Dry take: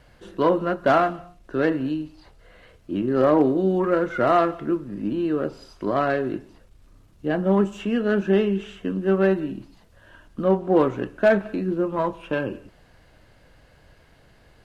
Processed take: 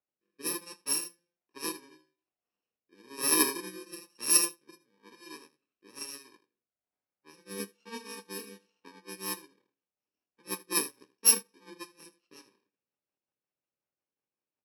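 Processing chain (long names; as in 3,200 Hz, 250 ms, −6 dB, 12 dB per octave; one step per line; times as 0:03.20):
samples in bit-reversed order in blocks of 64 samples
high-pass filter 370 Hz 12 dB per octave
low-pass that shuts in the quiet parts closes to 2,600 Hz, open at −14.5 dBFS
rotating-speaker cabinet horn 1.1 Hz, later 5.5 Hz, at 0:08.91
in parallel at −10.5 dB: soft clipping −19 dBFS, distortion −13 dB
on the sum: ambience of single reflections 25 ms −10 dB, 79 ms −9 dB
expander for the loud parts 2.5 to 1, over −36 dBFS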